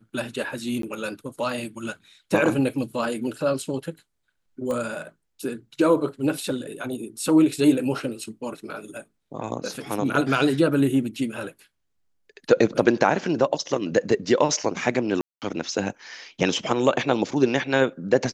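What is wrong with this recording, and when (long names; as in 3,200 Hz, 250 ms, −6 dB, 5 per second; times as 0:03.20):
0:00.82–0:00.83: drop-out 13 ms
0:04.71: click −18 dBFS
0:15.21–0:15.42: drop-out 208 ms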